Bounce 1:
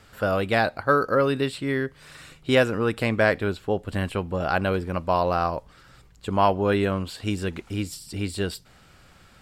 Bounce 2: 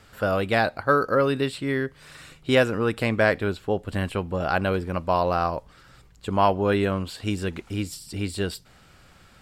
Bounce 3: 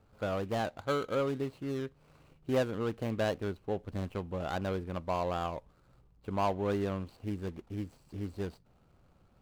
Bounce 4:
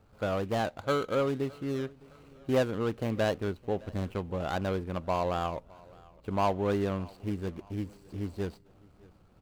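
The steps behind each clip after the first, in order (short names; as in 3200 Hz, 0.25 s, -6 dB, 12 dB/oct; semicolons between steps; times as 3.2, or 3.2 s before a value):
nothing audible
median filter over 25 samples; gain -9 dB
feedback echo 0.612 s, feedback 46%, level -24 dB; gain +3 dB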